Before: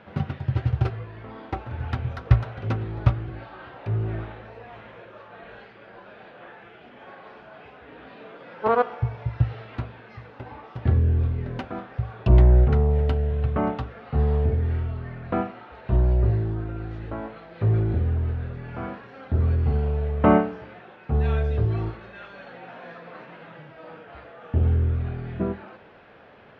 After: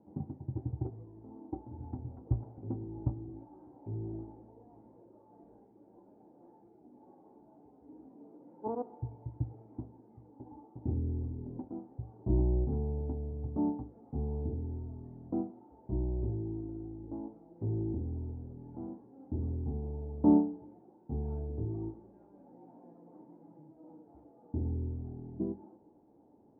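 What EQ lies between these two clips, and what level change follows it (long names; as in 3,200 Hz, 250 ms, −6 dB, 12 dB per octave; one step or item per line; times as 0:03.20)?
formant resonators in series u
high-shelf EQ 2,400 Hz −8 dB
notch filter 2,200 Hz, Q 11
0.0 dB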